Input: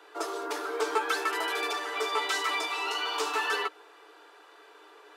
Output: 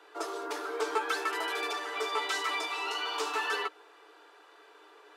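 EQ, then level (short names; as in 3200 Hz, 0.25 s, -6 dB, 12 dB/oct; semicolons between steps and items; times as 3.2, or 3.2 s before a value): high shelf 12000 Hz -4.5 dB; -2.5 dB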